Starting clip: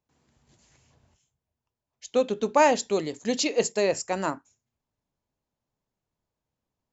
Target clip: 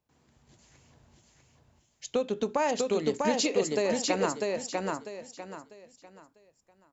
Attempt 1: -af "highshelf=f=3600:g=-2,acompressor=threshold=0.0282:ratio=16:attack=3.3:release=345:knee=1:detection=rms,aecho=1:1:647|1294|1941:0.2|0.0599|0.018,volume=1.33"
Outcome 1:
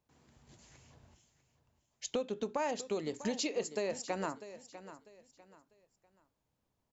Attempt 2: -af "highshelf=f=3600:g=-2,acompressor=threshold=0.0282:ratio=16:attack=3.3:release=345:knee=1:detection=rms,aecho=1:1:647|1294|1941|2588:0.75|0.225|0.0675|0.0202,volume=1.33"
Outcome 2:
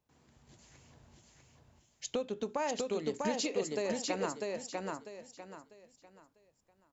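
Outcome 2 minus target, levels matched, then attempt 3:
compression: peak gain reduction +7 dB
-af "highshelf=f=3600:g=-2,acompressor=threshold=0.0668:ratio=16:attack=3.3:release=345:knee=1:detection=rms,aecho=1:1:647|1294|1941|2588:0.75|0.225|0.0675|0.0202,volume=1.33"

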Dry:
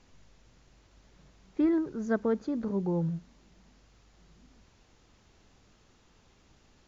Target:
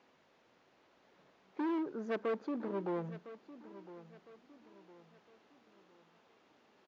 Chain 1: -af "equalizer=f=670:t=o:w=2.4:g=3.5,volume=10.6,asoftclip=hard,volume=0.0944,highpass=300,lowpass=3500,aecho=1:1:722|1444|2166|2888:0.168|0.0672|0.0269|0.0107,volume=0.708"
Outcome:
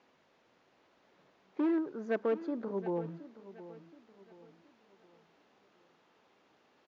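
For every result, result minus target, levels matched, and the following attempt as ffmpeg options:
overload inside the chain: distortion -9 dB; echo 286 ms early
-af "equalizer=f=670:t=o:w=2.4:g=3.5,volume=22.4,asoftclip=hard,volume=0.0447,highpass=300,lowpass=3500,aecho=1:1:722|1444|2166|2888:0.168|0.0672|0.0269|0.0107,volume=0.708"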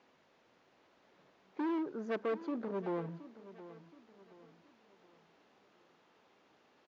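echo 286 ms early
-af "equalizer=f=670:t=o:w=2.4:g=3.5,volume=22.4,asoftclip=hard,volume=0.0447,highpass=300,lowpass=3500,aecho=1:1:1008|2016|3024|4032:0.168|0.0672|0.0269|0.0107,volume=0.708"

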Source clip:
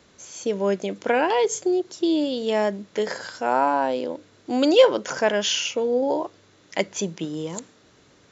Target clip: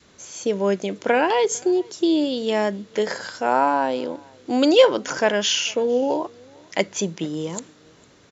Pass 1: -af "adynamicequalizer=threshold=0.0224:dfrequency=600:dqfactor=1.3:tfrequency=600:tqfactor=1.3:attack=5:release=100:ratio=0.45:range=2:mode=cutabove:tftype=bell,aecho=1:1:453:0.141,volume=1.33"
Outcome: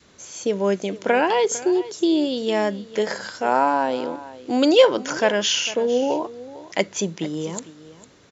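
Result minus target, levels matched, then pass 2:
echo-to-direct +10 dB
-af "adynamicequalizer=threshold=0.0224:dfrequency=600:dqfactor=1.3:tfrequency=600:tqfactor=1.3:attack=5:release=100:ratio=0.45:range=2:mode=cutabove:tftype=bell,aecho=1:1:453:0.0447,volume=1.33"

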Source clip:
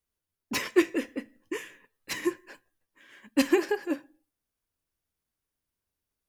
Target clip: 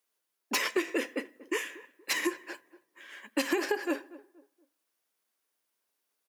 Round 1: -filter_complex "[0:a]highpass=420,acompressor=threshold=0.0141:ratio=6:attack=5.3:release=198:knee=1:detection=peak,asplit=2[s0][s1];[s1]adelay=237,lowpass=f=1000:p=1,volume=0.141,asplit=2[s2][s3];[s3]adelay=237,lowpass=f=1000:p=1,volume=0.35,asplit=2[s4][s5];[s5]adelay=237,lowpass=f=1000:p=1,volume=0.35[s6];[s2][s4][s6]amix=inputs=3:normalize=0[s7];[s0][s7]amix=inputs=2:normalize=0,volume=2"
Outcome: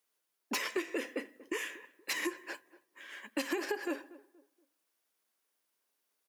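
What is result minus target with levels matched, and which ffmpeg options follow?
compression: peak gain reduction +6 dB
-filter_complex "[0:a]highpass=420,acompressor=threshold=0.0316:ratio=6:attack=5.3:release=198:knee=1:detection=peak,asplit=2[s0][s1];[s1]adelay=237,lowpass=f=1000:p=1,volume=0.141,asplit=2[s2][s3];[s3]adelay=237,lowpass=f=1000:p=1,volume=0.35,asplit=2[s4][s5];[s5]adelay=237,lowpass=f=1000:p=1,volume=0.35[s6];[s2][s4][s6]amix=inputs=3:normalize=0[s7];[s0][s7]amix=inputs=2:normalize=0,volume=2"

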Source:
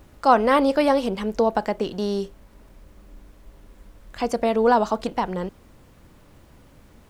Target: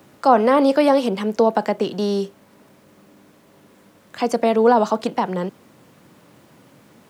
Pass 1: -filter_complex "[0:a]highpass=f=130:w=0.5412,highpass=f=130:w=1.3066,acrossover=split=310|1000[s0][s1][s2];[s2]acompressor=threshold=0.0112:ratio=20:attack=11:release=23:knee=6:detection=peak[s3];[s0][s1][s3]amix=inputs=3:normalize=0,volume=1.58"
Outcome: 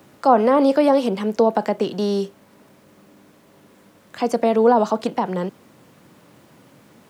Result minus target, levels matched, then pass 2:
compression: peak gain reduction +6.5 dB
-filter_complex "[0:a]highpass=f=130:w=0.5412,highpass=f=130:w=1.3066,acrossover=split=310|1000[s0][s1][s2];[s2]acompressor=threshold=0.0251:ratio=20:attack=11:release=23:knee=6:detection=peak[s3];[s0][s1][s3]amix=inputs=3:normalize=0,volume=1.58"

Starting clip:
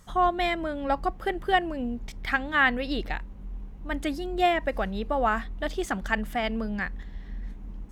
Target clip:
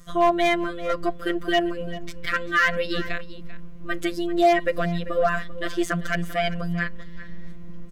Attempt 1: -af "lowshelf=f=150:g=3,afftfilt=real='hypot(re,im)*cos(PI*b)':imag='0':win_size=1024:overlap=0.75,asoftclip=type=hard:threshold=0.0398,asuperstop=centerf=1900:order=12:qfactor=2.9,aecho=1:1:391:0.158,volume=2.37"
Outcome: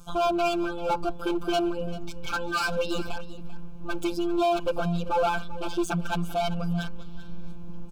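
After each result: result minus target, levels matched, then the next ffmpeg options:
hard clipper: distortion +14 dB; 2 kHz band -5.0 dB
-af "lowshelf=f=150:g=3,afftfilt=real='hypot(re,im)*cos(PI*b)':imag='0':win_size=1024:overlap=0.75,asoftclip=type=hard:threshold=0.15,asuperstop=centerf=1900:order=12:qfactor=2.9,aecho=1:1:391:0.158,volume=2.37"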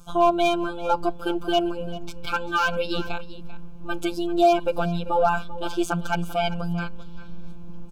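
2 kHz band -5.0 dB
-af "lowshelf=f=150:g=3,afftfilt=real='hypot(re,im)*cos(PI*b)':imag='0':win_size=1024:overlap=0.75,asoftclip=type=hard:threshold=0.15,asuperstop=centerf=850:order=12:qfactor=2.9,aecho=1:1:391:0.158,volume=2.37"

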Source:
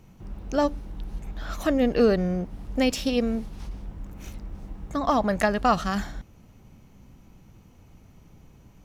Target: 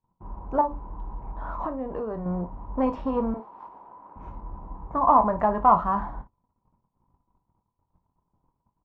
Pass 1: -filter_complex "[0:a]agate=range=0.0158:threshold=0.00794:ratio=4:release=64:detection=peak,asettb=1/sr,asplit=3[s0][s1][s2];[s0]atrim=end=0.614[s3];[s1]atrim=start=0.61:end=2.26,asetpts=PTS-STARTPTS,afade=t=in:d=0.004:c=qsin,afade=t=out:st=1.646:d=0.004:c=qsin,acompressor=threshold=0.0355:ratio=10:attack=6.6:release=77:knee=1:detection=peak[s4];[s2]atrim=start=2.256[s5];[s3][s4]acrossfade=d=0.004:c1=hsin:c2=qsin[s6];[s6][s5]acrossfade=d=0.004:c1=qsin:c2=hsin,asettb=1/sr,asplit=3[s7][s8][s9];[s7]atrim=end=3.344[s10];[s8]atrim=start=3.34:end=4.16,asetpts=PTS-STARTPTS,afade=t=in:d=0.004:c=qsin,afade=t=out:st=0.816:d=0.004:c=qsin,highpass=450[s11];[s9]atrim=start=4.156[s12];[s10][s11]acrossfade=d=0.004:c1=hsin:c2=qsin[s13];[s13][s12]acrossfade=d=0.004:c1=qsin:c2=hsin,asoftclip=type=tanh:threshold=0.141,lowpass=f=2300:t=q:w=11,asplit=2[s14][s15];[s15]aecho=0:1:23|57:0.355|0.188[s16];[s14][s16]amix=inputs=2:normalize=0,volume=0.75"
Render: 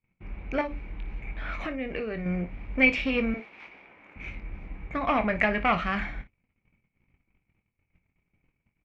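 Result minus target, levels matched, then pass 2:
2 kHz band +20.0 dB
-filter_complex "[0:a]agate=range=0.0158:threshold=0.00794:ratio=4:release=64:detection=peak,asettb=1/sr,asplit=3[s0][s1][s2];[s0]atrim=end=0.614[s3];[s1]atrim=start=0.61:end=2.26,asetpts=PTS-STARTPTS,afade=t=in:d=0.004:c=qsin,afade=t=out:st=1.646:d=0.004:c=qsin,acompressor=threshold=0.0355:ratio=10:attack=6.6:release=77:knee=1:detection=peak[s4];[s2]atrim=start=2.256[s5];[s3][s4]acrossfade=d=0.004:c1=hsin:c2=qsin[s6];[s6][s5]acrossfade=d=0.004:c1=qsin:c2=hsin,asettb=1/sr,asplit=3[s7][s8][s9];[s7]atrim=end=3.344[s10];[s8]atrim=start=3.34:end=4.16,asetpts=PTS-STARTPTS,afade=t=in:d=0.004:c=qsin,afade=t=out:st=0.816:d=0.004:c=qsin,highpass=450[s11];[s9]atrim=start=4.156[s12];[s10][s11]acrossfade=d=0.004:c1=hsin:c2=qsin[s13];[s13][s12]acrossfade=d=0.004:c1=qsin:c2=hsin,asoftclip=type=tanh:threshold=0.141,lowpass=f=980:t=q:w=11,asplit=2[s14][s15];[s15]aecho=0:1:23|57:0.355|0.188[s16];[s14][s16]amix=inputs=2:normalize=0,volume=0.75"

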